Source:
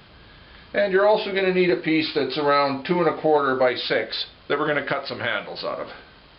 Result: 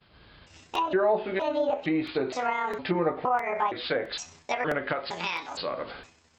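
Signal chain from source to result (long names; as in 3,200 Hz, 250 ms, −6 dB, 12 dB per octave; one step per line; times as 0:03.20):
pitch shifter gated in a rhythm +8.5 semitones, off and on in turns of 464 ms
downward expander −41 dBFS
in parallel at +2 dB: downward compressor 4 to 1, threshold −35 dBFS, peak gain reduction 17.5 dB
on the sum: treble cut that deepens with the level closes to 1,400 Hz, closed at −15 dBFS
regular buffer underruns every 0.66 s, samples 128, repeat, from 0:00.75
level −7 dB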